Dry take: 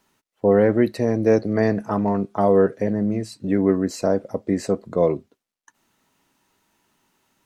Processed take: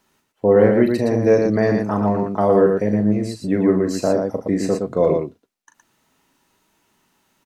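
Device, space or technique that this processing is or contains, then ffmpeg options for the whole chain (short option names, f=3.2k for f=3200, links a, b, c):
slapback doubling: -filter_complex "[0:a]asplit=3[a][b][c];[b]adelay=38,volume=-7.5dB[d];[c]adelay=116,volume=-4.5dB[e];[a][d][e]amix=inputs=3:normalize=0,volume=1dB"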